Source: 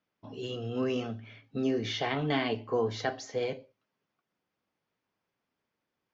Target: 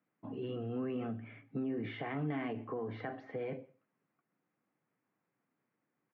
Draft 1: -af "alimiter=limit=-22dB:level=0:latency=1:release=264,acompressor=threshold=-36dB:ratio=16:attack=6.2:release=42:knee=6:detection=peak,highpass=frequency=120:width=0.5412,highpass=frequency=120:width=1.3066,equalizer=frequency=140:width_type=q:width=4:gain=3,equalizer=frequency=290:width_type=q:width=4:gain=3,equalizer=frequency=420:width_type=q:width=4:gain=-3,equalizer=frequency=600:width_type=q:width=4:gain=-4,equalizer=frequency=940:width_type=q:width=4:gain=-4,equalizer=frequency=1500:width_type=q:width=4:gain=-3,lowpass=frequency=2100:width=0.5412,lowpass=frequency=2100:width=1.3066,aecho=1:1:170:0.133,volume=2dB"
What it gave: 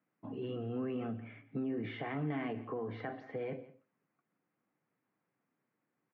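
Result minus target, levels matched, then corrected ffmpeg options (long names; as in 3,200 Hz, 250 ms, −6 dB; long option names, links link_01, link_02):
echo-to-direct +10 dB
-af "alimiter=limit=-22dB:level=0:latency=1:release=264,acompressor=threshold=-36dB:ratio=16:attack=6.2:release=42:knee=6:detection=peak,highpass=frequency=120:width=0.5412,highpass=frequency=120:width=1.3066,equalizer=frequency=140:width_type=q:width=4:gain=3,equalizer=frequency=290:width_type=q:width=4:gain=3,equalizer=frequency=420:width_type=q:width=4:gain=-3,equalizer=frequency=600:width_type=q:width=4:gain=-4,equalizer=frequency=940:width_type=q:width=4:gain=-4,equalizer=frequency=1500:width_type=q:width=4:gain=-3,lowpass=frequency=2100:width=0.5412,lowpass=frequency=2100:width=1.3066,aecho=1:1:170:0.0422,volume=2dB"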